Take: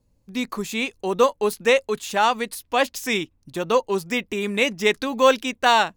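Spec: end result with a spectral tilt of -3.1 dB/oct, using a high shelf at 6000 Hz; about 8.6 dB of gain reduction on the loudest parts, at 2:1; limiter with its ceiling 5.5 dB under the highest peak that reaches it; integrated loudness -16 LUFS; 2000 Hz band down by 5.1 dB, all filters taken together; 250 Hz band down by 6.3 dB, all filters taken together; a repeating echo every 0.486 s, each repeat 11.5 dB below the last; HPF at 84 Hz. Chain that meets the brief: HPF 84 Hz; bell 250 Hz -7.5 dB; bell 2000 Hz -7.5 dB; high shelf 6000 Hz +5 dB; compressor 2:1, threshold -29 dBFS; limiter -19.5 dBFS; feedback echo 0.486 s, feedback 27%, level -11.5 dB; gain +15.5 dB

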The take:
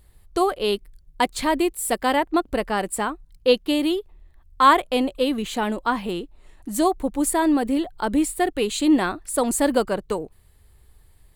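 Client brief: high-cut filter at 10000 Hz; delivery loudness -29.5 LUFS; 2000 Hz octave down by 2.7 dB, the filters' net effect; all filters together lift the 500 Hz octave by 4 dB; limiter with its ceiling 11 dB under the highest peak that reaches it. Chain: LPF 10000 Hz; bell 500 Hz +5 dB; bell 2000 Hz -4 dB; gain -5.5 dB; limiter -19 dBFS

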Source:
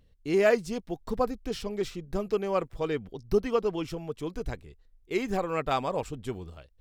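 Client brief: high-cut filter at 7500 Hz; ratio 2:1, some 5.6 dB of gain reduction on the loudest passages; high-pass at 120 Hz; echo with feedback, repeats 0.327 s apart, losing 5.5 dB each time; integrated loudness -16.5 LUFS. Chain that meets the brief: HPF 120 Hz; LPF 7500 Hz; compressor 2:1, threshold -28 dBFS; feedback echo 0.327 s, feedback 53%, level -5.5 dB; gain +16 dB

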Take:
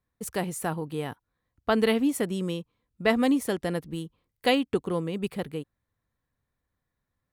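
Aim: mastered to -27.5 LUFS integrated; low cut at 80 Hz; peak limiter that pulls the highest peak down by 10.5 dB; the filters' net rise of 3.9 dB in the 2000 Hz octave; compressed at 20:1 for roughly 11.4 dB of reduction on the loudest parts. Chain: HPF 80 Hz; bell 2000 Hz +4.5 dB; compressor 20:1, threshold -28 dBFS; gain +9.5 dB; limiter -17 dBFS

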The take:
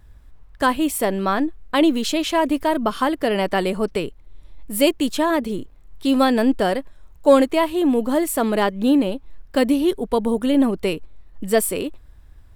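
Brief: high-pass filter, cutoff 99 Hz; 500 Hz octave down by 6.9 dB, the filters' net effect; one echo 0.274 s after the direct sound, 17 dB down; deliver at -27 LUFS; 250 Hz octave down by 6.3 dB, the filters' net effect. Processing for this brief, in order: HPF 99 Hz; bell 250 Hz -5 dB; bell 500 Hz -7.5 dB; echo 0.274 s -17 dB; gain -2 dB

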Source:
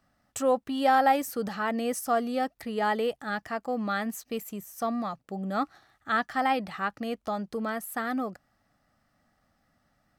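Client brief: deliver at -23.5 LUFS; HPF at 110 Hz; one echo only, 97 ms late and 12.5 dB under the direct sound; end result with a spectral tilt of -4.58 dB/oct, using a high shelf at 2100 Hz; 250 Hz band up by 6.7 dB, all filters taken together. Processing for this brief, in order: HPF 110 Hz; bell 250 Hz +7.5 dB; high shelf 2100 Hz +4 dB; echo 97 ms -12.5 dB; gain +2.5 dB

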